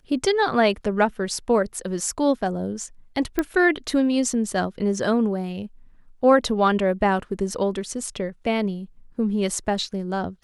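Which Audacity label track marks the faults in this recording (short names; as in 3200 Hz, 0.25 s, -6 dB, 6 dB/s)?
3.390000	3.390000	pop -9 dBFS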